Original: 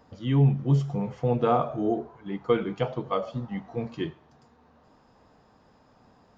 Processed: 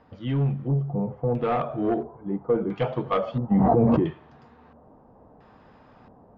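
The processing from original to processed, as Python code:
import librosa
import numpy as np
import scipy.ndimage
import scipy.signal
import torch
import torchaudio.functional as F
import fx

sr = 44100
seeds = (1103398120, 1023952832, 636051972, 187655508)

p1 = 10.0 ** (-22.0 / 20.0) * (np.abs((x / 10.0 ** (-22.0 / 20.0) + 3.0) % 4.0 - 2.0) - 1.0)
p2 = x + (p1 * librosa.db_to_amplitude(-9.5))
p3 = fx.rider(p2, sr, range_db=4, speed_s=0.5)
p4 = 10.0 ** (-14.0 / 20.0) * np.tanh(p3 / 10.0 ** (-14.0 / 20.0))
p5 = fx.filter_lfo_lowpass(p4, sr, shape='square', hz=0.74, low_hz=740.0, high_hz=2800.0, q=1.0)
y = fx.env_flatten(p5, sr, amount_pct=100, at=(3.5, 3.99), fade=0.02)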